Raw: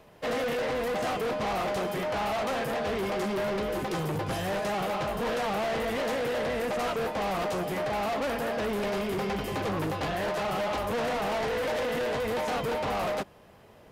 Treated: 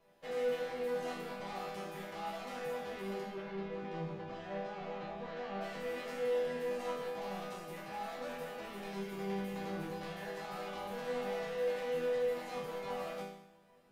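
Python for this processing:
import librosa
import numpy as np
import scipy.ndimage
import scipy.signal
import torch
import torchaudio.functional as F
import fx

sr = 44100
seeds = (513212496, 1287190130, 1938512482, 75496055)

y = fx.air_absorb(x, sr, metres=180.0, at=(3.2, 5.61))
y = fx.resonator_bank(y, sr, root=52, chord='minor', decay_s=0.77)
y = y * 10.0 ** (8.5 / 20.0)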